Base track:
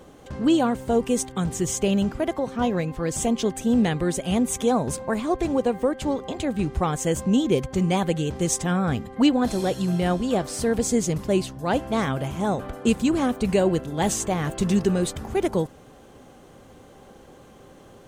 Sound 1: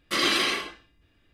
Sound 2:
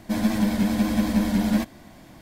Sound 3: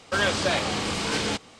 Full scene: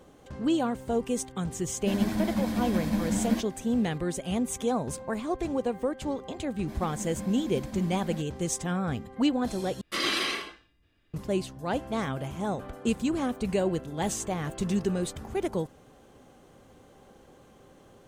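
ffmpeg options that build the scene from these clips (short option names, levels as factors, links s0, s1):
-filter_complex "[2:a]asplit=2[s0][s1];[0:a]volume=0.473,asplit=2[s2][s3];[s2]atrim=end=9.814[s4];[1:a]atrim=end=1.33,asetpts=PTS-STARTPTS,volume=0.596[s5];[s3]atrim=start=11.136[s6];[s0]atrim=end=2.21,asetpts=PTS-STARTPTS,volume=0.473,afade=t=in:d=0.004:c=hsin,afade=t=out:st=2.206:d=0.004:c=hsin,adelay=1770[s7];[s1]atrim=end=2.21,asetpts=PTS-STARTPTS,volume=0.133,afade=t=in:d=0.004:c=hsin,afade=t=out:st=2.206:d=0.004:c=hsin,adelay=290178S[s8];[s4][s5]acrossfade=d=0.004:c1=hsin:c2=hsin[s9];[s9][s6]acrossfade=d=0.004:c1=hsin:c2=hsin[s10];[s10][s7][s8]amix=inputs=3:normalize=0"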